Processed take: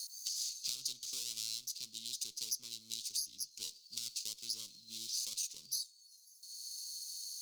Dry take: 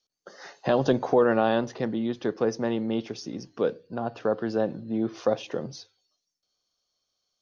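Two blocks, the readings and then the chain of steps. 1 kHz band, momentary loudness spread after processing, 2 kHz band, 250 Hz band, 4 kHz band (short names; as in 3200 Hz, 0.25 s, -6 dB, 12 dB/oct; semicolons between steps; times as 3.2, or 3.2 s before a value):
under -40 dB, 7 LU, -24.0 dB, -38.5 dB, +4.0 dB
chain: minimum comb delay 0.45 ms; inverse Chebyshev high-pass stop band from 1900 Hz, stop band 50 dB; three-band squash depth 100%; gain +12 dB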